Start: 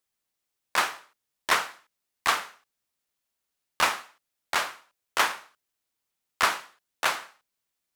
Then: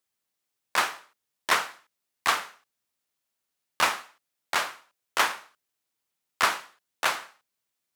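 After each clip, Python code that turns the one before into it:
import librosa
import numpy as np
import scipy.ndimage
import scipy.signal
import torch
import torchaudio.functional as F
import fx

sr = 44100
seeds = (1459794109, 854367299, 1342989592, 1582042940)

y = scipy.signal.sosfilt(scipy.signal.butter(2, 70.0, 'highpass', fs=sr, output='sos'), x)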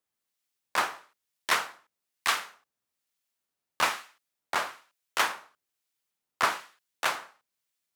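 y = fx.harmonic_tremolo(x, sr, hz=1.1, depth_pct=50, crossover_hz=1500.0)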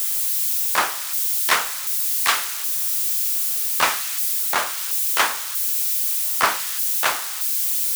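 y = x + 0.5 * 10.0 ** (-24.5 / 20.0) * np.diff(np.sign(x), prepend=np.sign(x[:1]))
y = y * 10.0 ** (6.5 / 20.0)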